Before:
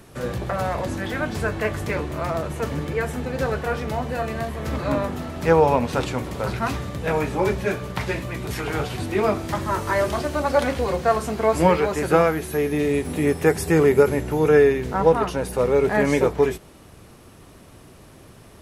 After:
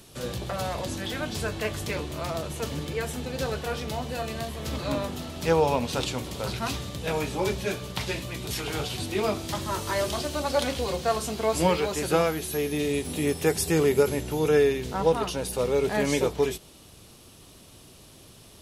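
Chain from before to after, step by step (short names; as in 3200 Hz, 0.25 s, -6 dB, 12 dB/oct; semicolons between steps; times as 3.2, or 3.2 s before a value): resonant high shelf 2500 Hz +8 dB, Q 1.5; gain -5.5 dB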